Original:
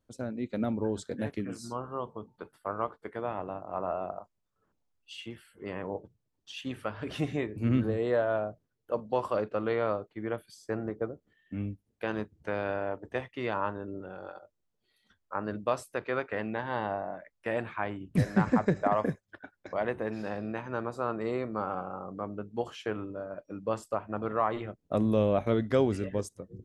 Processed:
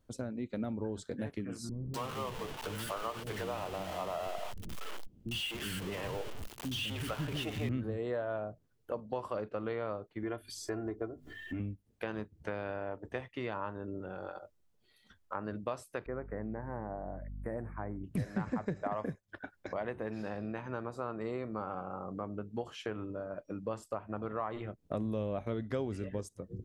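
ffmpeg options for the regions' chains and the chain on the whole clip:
-filter_complex "[0:a]asettb=1/sr,asplit=3[s0][s1][s2];[s0]atrim=end=1.694[s3];[s1]atrim=start=1.69:end=7.69,asetpts=PTS-STARTPTS,afade=t=in:d=0.004:c=qsin,afade=t=out:st=5.996:d=0.004:c=qsin,aeval=exprs='val(0)+0.5*0.0178*sgn(val(0))':c=same,equalizer=f=3000:w=3.2:g=7,acrossover=split=310[s4][s5];[s5]adelay=250[s6];[s4][s6]amix=inputs=2:normalize=0,atrim=end_sample=264600[s7];[s2]atrim=start=7.686[s8];[s3][s7]acrossfade=d=0.004:c1=hsin:c2=qsin[s9];[s9][s8]acrossfade=d=0.004:c1=qsin:c2=hsin,asettb=1/sr,asplit=3[s10][s11][s12];[s10]atrim=end=10.234[s13];[s11]atrim=start=10.23:end=11.6,asetpts=PTS-STARTPTS,afade=t=in:d=0.004:c=qsin,afade=t=out:st=1.366:d=0.004:c=qsin,bandreject=f=50:t=h:w=6,bandreject=f=100:t=h:w=6,bandreject=f=150:t=h:w=6,bandreject=f=200:t=h:w=6,bandreject=f=250:t=h:w=6,aecho=1:1:2.9:0.69,atrim=end_sample=60417,acompressor=mode=upward:threshold=0.0141:ratio=2.5:attack=3.2:release=140:knee=2.83:detection=peak[s14];[s12]atrim=start=11.596[s15];[s13][s14]acrossfade=d=0.004:c1=hsin:c2=qsin[s16];[s16][s15]acrossfade=d=0.004:c1=qsin:c2=hsin,asettb=1/sr,asplit=3[s17][s18][s19];[s17]atrim=end=16.064[s20];[s18]atrim=start=16.06:end=18.04,asetpts=PTS-STARTPTS,afade=t=in:d=0.004:c=qsin,afade=t=out:st=1.976:d=0.004:c=qsin,equalizer=f=1700:w=0.5:g=-11,aeval=exprs='val(0)+0.00398*(sin(2*PI*50*n/s)+sin(2*PI*2*50*n/s)/2+sin(2*PI*3*50*n/s)/3+sin(2*PI*4*50*n/s)/4+sin(2*PI*5*50*n/s)/5)':c=same,asuperstop=centerf=4300:order=12:qfactor=0.69[s21];[s19]atrim=start=18.036[s22];[s20][s21]acrossfade=d=0.004:c1=hsin:c2=qsin[s23];[s23][s22]acrossfade=d=0.004:c1=qsin:c2=hsin,lowshelf=f=110:g=5.5,acompressor=threshold=0.00708:ratio=2.5,volume=1.58"

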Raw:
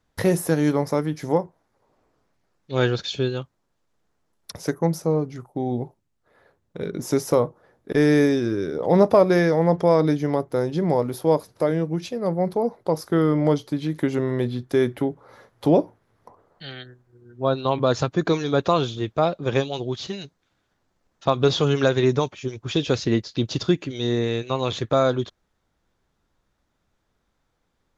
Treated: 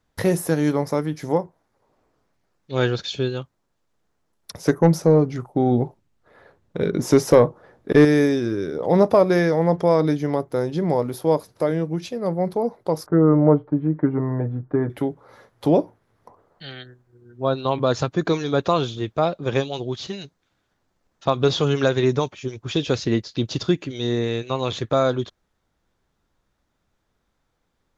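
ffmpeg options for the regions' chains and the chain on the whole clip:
-filter_complex "[0:a]asettb=1/sr,asplit=3[s0][s1][s2];[s0]atrim=end=4.664[s3];[s1]atrim=start=4.66:end=8.05,asetpts=PTS-STARTPTS,afade=t=in:d=0.004:c=qsin,afade=t=out:st=3.386:d=0.004:c=qsin,highshelf=f=7700:g=-9.5,acontrast=89[s4];[s2]atrim=start=8.046[s5];[s3][s4]acrossfade=d=0.004:c1=hsin:c2=qsin[s6];[s6][s5]acrossfade=d=0.004:c1=qsin:c2=hsin,asettb=1/sr,asplit=3[s7][s8][s9];[s7]atrim=end=13.064[s10];[s8]atrim=start=13.06:end=14.9,asetpts=PTS-STARTPTS,afade=t=in:d=0.004:c=qsin,afade=t=out:st=1.836:d=0.004:c=qsin,lowpass=f=1400:w=0.5412,lowpass=f=1400:w=1.3066,aecho=1:1:6.6:0.69,atrim=end_sample=81144[s11];[s9]atrim=start=14.896[s12];[s10][s11]acrossfade=d=0.004:c1=hsin:c2=qsin[s13];[s13][s12]acrossfade=d=0.004:c1=qsin:c2=hsin"

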